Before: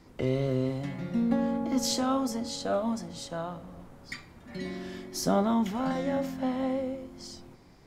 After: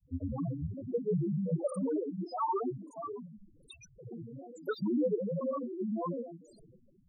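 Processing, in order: loudest bins only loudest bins 2; varispeed +11%; grains, grains 20/s, pitch spread up and down by 12 st

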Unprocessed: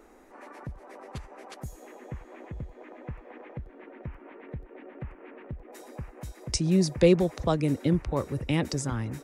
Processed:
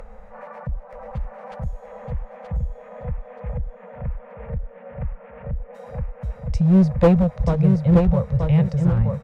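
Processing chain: elliptic band-stop 210–480 Hz, stop band 40 dB; tone controls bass -4 dB, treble -7 dB; harmonic-percussive split percussive -6 dB; tilt -4 dB/oct; in parallel at -2.5 dB: upward compressor, threshold -27 dBFS; on the sum: one-sided clip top -13.5 dBFS; on a send: feedback echo 0.927 s, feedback 26%, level -5 dB

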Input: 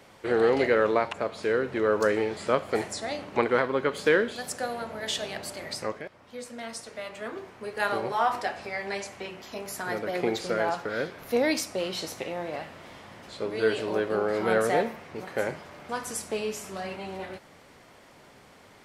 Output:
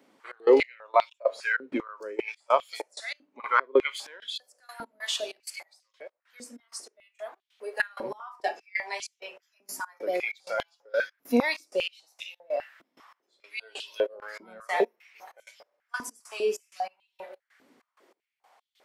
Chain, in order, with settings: spectral noise reduction 12 dB; step gate "xx.x..x." 96 bpm -24 dB; 1.57–2.32 negative-ratio compressor -35 dBFS, ratio -0.5; stepped high-pass 5 Hz 260–3400 Hz

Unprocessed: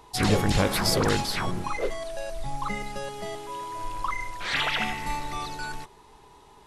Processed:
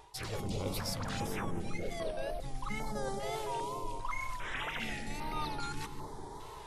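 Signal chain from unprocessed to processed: notch 760 Hz, Q 12; reverse; compressor 12:1, threshold -39 dBFS, peak gain reduction 23 dB; reverse; wow and flutter 100 cents; on a send: analogue delay 0.215 s, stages 1024, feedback 53%, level -3 dB; on the sum: stepped notch 2.5 Hz 240–7100 Hz; gain +5.5 dB

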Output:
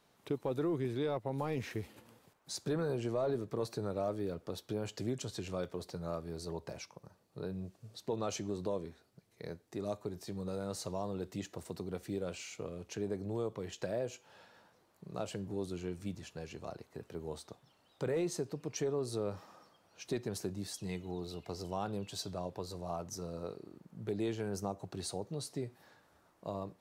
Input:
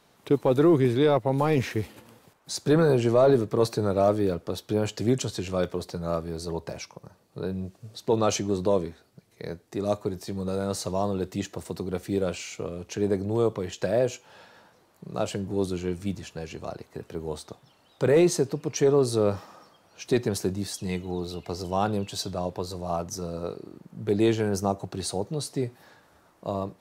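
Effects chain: compressor 2:1, threshold -27 dBFS, peak gain reduction 6.5 dB; gain -8.5 dB

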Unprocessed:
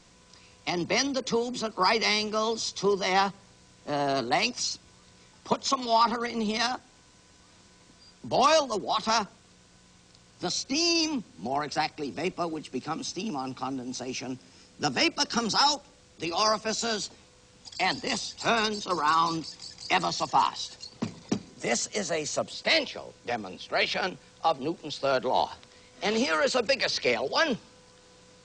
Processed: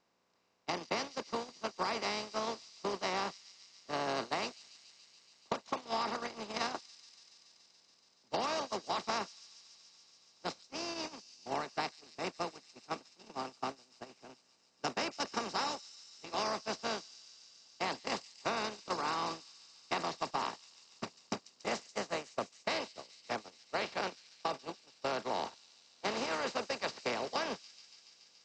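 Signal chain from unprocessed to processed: per-bin compression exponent 0.4; high shelf 3600 Hz -3.5 dB; gate -18 dBFS, range -38 dB; compressor, threshold -23 dBFS, peak gain reduction 10.5 dB; on a send: thin delay 0.142 s, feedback 84%, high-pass 5400 Hz, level -10 dB; on the sum: gain -9 dB

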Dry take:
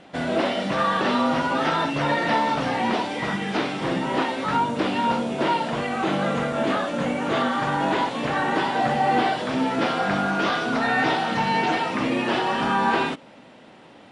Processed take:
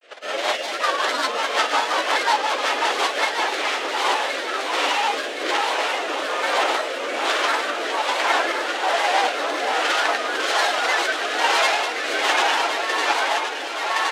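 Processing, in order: tracing distortion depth 0.068 ms; high shelf 2900 Hz +8 dB; doubler 37 ms -6 dB; grains, pitch spread up and down by 3 st; Bessel high-pass 650 Hz, order 8; high shelf 6400 Hz -4.5 dB; echo with dull and thin repeats by turns 0.534 s, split 890 Hz, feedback 83%, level -3 dB; rotary speaker horn 5.5 Hz, later 1.2 Hz, at 3.19; gain +5 dB

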